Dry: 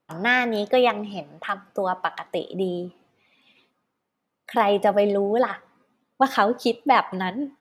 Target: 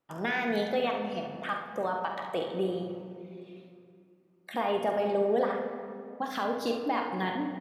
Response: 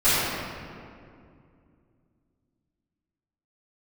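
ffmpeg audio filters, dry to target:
-filter_complex "[0:a]alimiter=limit=-15.5dB:level=0:latency=1:release=215,aecho=1:1:47|70:0.335|0.335,asplit=2[link_01][link_02];[1:a]atrim=start_sample=2205[link_03];[link_02][link_03]afir=irnorm=-1:irlink=0,volume=-23.5dB[link_04];[link_01][link_04]amix=inputs=2:normalize=0,volume=-6dB"

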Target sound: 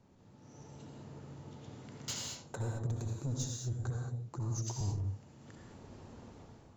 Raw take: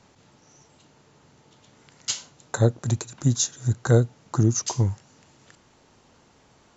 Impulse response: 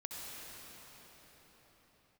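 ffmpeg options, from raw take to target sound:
-filter_complex "[0:a]tiltshelf=frequency=740:gain=7,dynaudnorm=framelen=200:gausssize=5:maxgain=11.5dB,alimiter=limit=-12dB:level=0:latency=1:release=25,asettb=1/sr,asplit=3[link_01][link_02][link_03];[link_01]atrim=end=3.764[link_04];[link_02]atrim=start=3.76:end=4.81,asetpts=PTS-STARTPTS,afade=type=in:duration=0.004:curve=qsin,afade=type=out:start_time=1.046:duration=0.004:curve=qsin,acrossover=split=120|3000[link_05][link_06][link_07];[link_06]acompressor=threshold=-35dB:ratio=2[link_08];[link_05][link_08][link_07]amix=inputs=3:normalize=0[link_09];[link_03]atrim=start=4.806[link_10];[link_04][link_09]acrossfade=duration=0.004:curve1=hsin:curve2=qsin[link_11];[link_11][link_10]acrossfade=duration=0.004:curve1=qsin:curve2=hsin,asoftclip=type=tanh:threshold=-20.5dB[link_12];[1:a]atrim=start_sample=2205,afade=type=out:start_time=0.28:duration=0.01,atrim=end_sample=12789[link_13];[link_12][link_13]afir=irnorm=-1:irlink=0,volume=-6dB"

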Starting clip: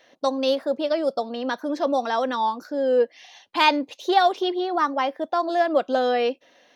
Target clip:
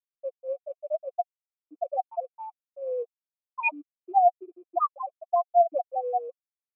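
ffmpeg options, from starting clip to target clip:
ffmpeg -i in.wav -filter_complex "[0:a]afftfilt=real='re*gte(hypot(re,im),0.708)':imag='im*gte(hypot(re,im),0.708)':win_size=1024:overlap=0.75,aphaser=in_gain=1:out_gain=1:delay=4.9:decay=0.31:speed=0.69:type=triangular,asplit=3[link_01][link_02][link_03];[link_01]bandpass=frequency=730:width_type=q:width=8,volume=0dB[link_04];[link_02]bandpass=frequency=1090:width_type=q:width=8,volume=-6dB[link_05];[link_03]bandpass=frequency=2440:width_type=q:width=8,volume=-9dB[link_06];[link_04][link_05][link_06]amix=inputs=3:normalize=0,highpass=130,equalizer=frequency=370:width_type=q:width=4:gain=-5,equalizer=frequency=570:width_type=q:width=4:gain=-6,equalizer=frequency=840:width_type=q:width=4:gain=-8,equalizer=frequency=1600:width_type=q:width=4:gain=-4,equalizer=frequency=2300:width_type=q:width=4:gain=4,lowpass=frequency=4300:width=0.5412,lowpass=frequency=4300:width=1.3066,volume=7.5dB" out.wav

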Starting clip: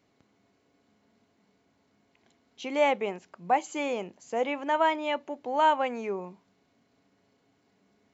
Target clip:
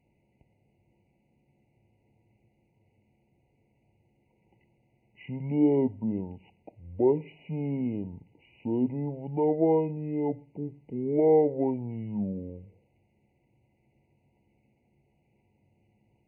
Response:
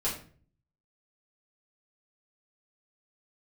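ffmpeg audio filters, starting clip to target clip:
-filter_complex "[0:a]asetrate=22050,aresample=44100,asplit=2[link_01][link_02];[link_02]aemphasis=mode=production:type=50fm[link_03];[1:a]atrim=start_sample=2205,afade=type=out:start_time=0.31:duration=0.01,atrim=end_sample=14112[link_04];[link_03][link_04]afir=irnorm=-1:irlink=0,volume=-29dB[link_05];[link_01][link_05]amix=inputs=2:normalize=0,afftfilt=real='re*eq(mod(floor(b*sr/1024/990),2),0)':imag='im*eq(mod(floor(b*sr/1024/990),2),0)':win_size=1024:overlap=0.75"

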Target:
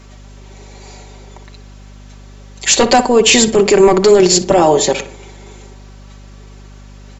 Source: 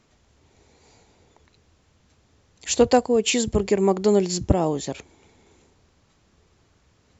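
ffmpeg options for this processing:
ffmpeg -i in.wav -filter_complex "[0:a]highpass=310,aecho=1:1:5.2:0.66,aeval=exprs='val(0)+0.00158*(sin(2*PI*50*n/s)+sin(2*PI*2*50*n/s)/2+sin(2*PI*3*50*n/s)/3+sin(2*PI*4*50*n/s)/4+sin(2*PI*5*50*n/s)/5)':channel_layout=same,apsyclip=20.5dB,asplit=2[link_01][link_02];[link_02]adelay=60,lowpass=frequency=2100:poles=1,volume=-11dB,asplit=2[link_03][link_04];[link_04]adelay=60,lowpass=frequency=2100:poles=1,volume=0.5,asplit=2[link_05][link_06];[link_06]adelay=60,lowpass=frequency=2100:poles=1,volume=0.5,asplit=2[link_07][link_08];[link_08]adelay=60,lowpass=frequency=2100:poles=1,volume=0.5,asplit=2[link_09][link_10];[link_10]adelay=60,lowpass=frequency=2100:poles=1,volume=0.5[link_11];[link_03][link_05][link_07][link_09][link_11]amix=inputs=5:normalize=0[link_12];[link_01][link_12]amix=inputs=2:normalize=0,volume=-4dB" out.wav

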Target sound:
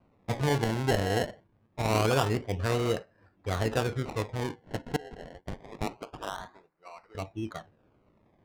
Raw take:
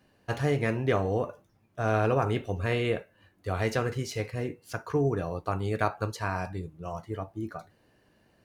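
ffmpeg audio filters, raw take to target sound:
ffmpeg -i in.wav -filter_complex "[0:a]asettb=1/sr,asplit=3[link_01][link_02][link_03];[link_01]atrim=end=4.964[link_04];[link_02]atrim=start=4.96:end=7.15,asetpts=PTS-STARTPTS,afade=type=in:duration=0.004:curve=qsin,afade=type=out:start_time=2.186:duration=0.004:curve=qsin,highpass=1200[link_05];[link_03]atrim=start=7.146[link_06];[link_04][link_05]acrossfade=duration=0.004:curve1=hsin:curve2=qsin[link_07];[link_07][link_06]acrossfade=duration=0.004:curve1=qsin:curve2=hsin,acrusher=samples=25:mix=1:aa=0.000001:lfo=1:lforange=25:lforate=0.25,adynamicsmooth=sensitivity=6.5:basefreq=2600" out.wav

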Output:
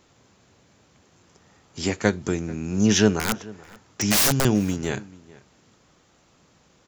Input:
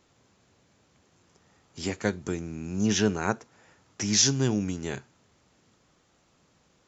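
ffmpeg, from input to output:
ffmpeg -i in.wav -filter_complex "[0:a]aeval=exprs='0.398*(cos(1*acos(clip(val(0)/0.398,-1,1)))-cos(1*PI/2))+0.0398*(cos(2*acos(clip(val(0)/0.398,-1,1)))-cos(2*PI/2))':channel_layout=same,asettb=1/sr,asplit=3[link_01][link_02][link_03];[link_01]atrim=end=3.194[link_04];[link_02]atrim=start=3.19:end=4.45,asetpts=PTS-STARTPTS,afade=type=in:duration=0.004:curve=qsin,afade=type=out:start_time=1.256:duration=0.004:curve=qsin,aeval=exprs='(mod(9.44*val(0)+1,2)-1)/9.44':channel_layout=same[link_05];[link_03]atrim=start=4.446[link_06];[link_04][link_05]acrossfade=duration=0.004:curve1=hsin:curve2=qsin[link_07];[link_07][link_06]acrossfade=duration=0.004:curve1=qsin:curve2=hsin,asplit=2[link_08][link_09];[link_09]adelay=437.3,volume=-21dB,highshelf=frequency=4000:gain=-9.84[link_10];[link_08][link_10]amix=inputs=2:normalize=0,volume=6dB" out.wav

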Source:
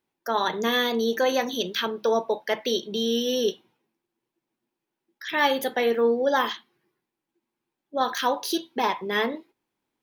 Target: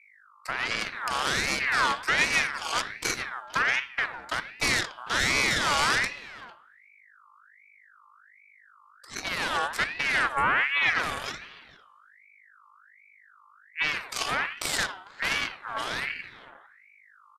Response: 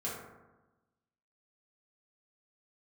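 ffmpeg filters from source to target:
-filter_complex "[0:a]alimiter=limit=-16.5dB:level=0:latency=1:release=209,equalizer=frequency=500:width_type=o:width=0.33:gain=4,equalizer=frequency=2500:width_type=o:width=0.33:gain=7,equalizer=frequency=6300:width_type=o:width=0.33:gain=6,acrossover=split=7900[link_01][link_02];[link_02]acompressor=threshold=-49dB:ratio=4:attack=1:release=60[link_03];[link_01][link_03]amix=inputs=2:normalize=0,asuperstop=centerf=1700:order=12:qfactor=1.1,aeval=exprs='0.251*(cos(1*acos(clip(val(0)/0.251,-1,1)))-cos(1*PI/2))+0.0501*(cos(3*acos(clip(val(0)/0.251,-1,1)))-cos(3*PI/2))+0.0398*(cos(8*acos(clip(val(0)/0.251,-1,1)))-cos(8*PI/2))':channel_layout=same,highshelf=frequency=5300:gain=10.5,bandreject=frequency=86.78:width_type=h:width=4,bandreject=frequency=173.56:width_type=h:width=4,bandreject=frequency=260.34:width_type=h:width=4,bandreject=frequency=347.12:width_type=h:width=4,bandreject=frequency=433.9:width_type=h:width=4,bandreject=frequency=520.68:width_type=h:width=4,bandreject=frequency=607.46:width_type=h:width=4,bandreject=frequency=694.24:width_type=h:width=4,bandreject=frequency=781.02:width_type=h:width=4,bandreject=frequency=867.8:width_type=h:width=4,bandreject=frequency=954.58:width_type=h:width=4,bandreject=frequency=1041.36:width_type=h:width=4,asplit=2[link_04][link_05];[link_05]adelay=260,highpass=300,lowpass=3400,asoftclip=type=hard:threshold=-23dB,volume=-15dB[link_06];[link_04][link_06]amix=inputs=2:normalize=0,asetrate=25442,aresample=44100,aeval=exprs='val(0)+0.002*(sin(2*PI*50*n/s)+sin(2*PI*2*50*n/s)/2+sin(2*PI*3*50*n/s)/3+sin(2*PI*4*50*n/s)/4+sin(2*PI*5*50*n/s)/5)':channel_layout=same,asplit=2[link_07][link_08];[1:a]atrim=start_sample=2205,asetrate=79380,aresample=44100[link_09];[link_08][link_09]afir=irnorm=-1:irlink=0,volume=-8.5dB[link_10];[link_07][link_10]amix=inputs=2:normalize=0,aeval=exprs='val(0)*sin(2*PI*1700*n/s+1700*0.35/1.3*sin(2*PI*1.3*n/s))':channel_layout=same"

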